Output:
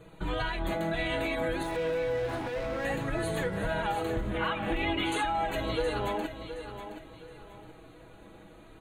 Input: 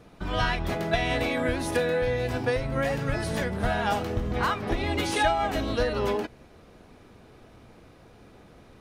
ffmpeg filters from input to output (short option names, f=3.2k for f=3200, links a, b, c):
-filter_complex "[0:a]asuperstop=centerf=5300:order=8:qfactor=2.9,aecho=1:1:6.2:0.56,alimiter=limit=-20.5dB:level=0:latency=1:release=110,flanger=delay=2:depth=1.6:regen=-44:speed=0.54:shape=sinusoidal,asettb=1/sr,asplit=3[a][b][c];[a]atrim=end=1.634[d];[b]atrim=start=1.63:end=2.85,asetpts=PTS-STARTPTS,afade=t=in:d=0.004:c=qsin,afade=t=out:st=1.216:d=0.004:c=qsin,asplit=2[e][f];[f]highpass=f=720:p=1,volume=26dB,asoftclip=type=tanh:threshold=-33dB[g];[e][g]amix=inputs=2:normalize=0,lowpass=f=1.6k:p=1,volume=-6dB[h];[c]atrim=start=2.846[i];[d][h]acrossfade=d=0.004:c1=hsin:c2=qsin[j];[j][i]acrossfade=d=0.004:c1=qsin:c2=hsin,asettb=1/sr,asplit=3[k][l][m];[k]atrim=end=4.304[n];[l]atrim=start=4.3:end=5.12,asetpts=PTS-STARTPTS,afade=t=in:d=0.004:c=qsin,afade=t=out:st=0.816:d=0.004:c=qsin,highshelf=f=4k:t=q:w=3:g=-10[o];[m]atrim=start=5.116[p];[n][o]acrossfade=d=0.004:c1=hsin:c2=qsin[q];[q][p]acrossfade=d=0.004:c1=qsin:c2=hsin,aecho=1:1:720|1440|2160:0.299|0.0955|0.0306,volume=2.5dB"